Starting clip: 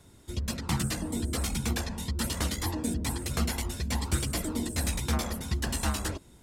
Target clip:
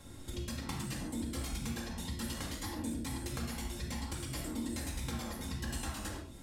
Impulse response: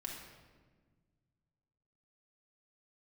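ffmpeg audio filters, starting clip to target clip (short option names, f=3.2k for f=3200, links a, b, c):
-filter_complex "[0:a]acompressor=threshold=-42dB:ratio=6[a];[1:a]atrim=start_sample=2205,atrim=end_sample=6615[b];[a][b]afir=irnorm=-1:irlink=0,volume=7dB"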